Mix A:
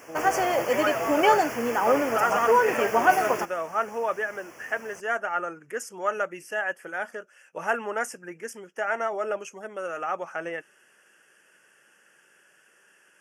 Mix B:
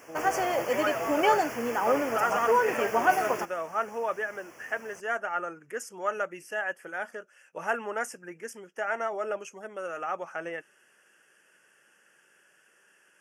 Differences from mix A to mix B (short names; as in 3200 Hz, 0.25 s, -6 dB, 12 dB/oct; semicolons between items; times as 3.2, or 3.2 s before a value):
speech -3.0 dB; background -3.5 dB